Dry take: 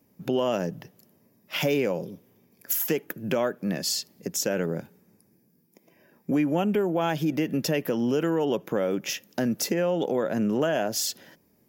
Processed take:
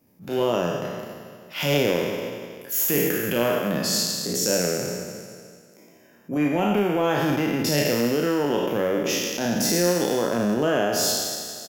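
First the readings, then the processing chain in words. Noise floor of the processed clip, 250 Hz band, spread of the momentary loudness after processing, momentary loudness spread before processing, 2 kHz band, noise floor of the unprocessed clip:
-53 dBFS, +2.5 dB, 11 LU, 7 LU, +6.0 dB, -65 dBFS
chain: spectral trails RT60 2.12 s; doubler 34 ms -7.5 dB; transient shaper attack -8 dB, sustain -4 dB

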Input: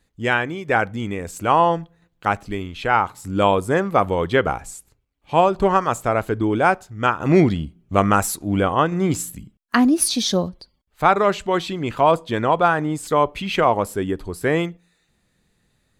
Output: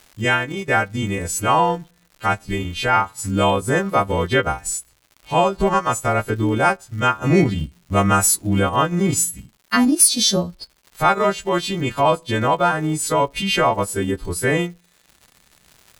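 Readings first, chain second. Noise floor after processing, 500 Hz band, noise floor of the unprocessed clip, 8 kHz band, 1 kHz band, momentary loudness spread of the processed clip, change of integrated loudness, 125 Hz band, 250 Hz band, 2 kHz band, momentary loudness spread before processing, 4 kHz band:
-59 dBFS, -1.0 dB, -68 dBFS, +8.5 dB, -0.5 dB, 7 LU, +1.0 dB, +2.5 dB, 0.0 dB, +1.5 dB, 10 LU, +5.0 dB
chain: frequency quantiser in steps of 2 st; low shelf 160 Hz +8 dB; in parallel at 0 dB: compressor, threshold -22 dBFS, peak gain reduction 14.5 dB; on the sum: crackle 220/s -31 dBFS; transient shaper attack -1 dB, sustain -7 dB; gain -3.5 dB

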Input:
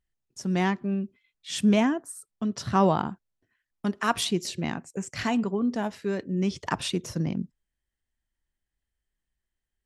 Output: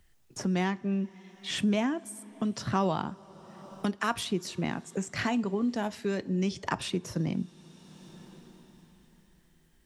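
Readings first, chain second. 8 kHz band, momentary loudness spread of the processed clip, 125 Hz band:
-4.0 dB, 17 LU, -3.0 dB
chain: two-slope reverb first 0.27 s, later 4 s, from -21 dB, DRR 16.5 dB; three-band squash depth 70%; gain -3 dB

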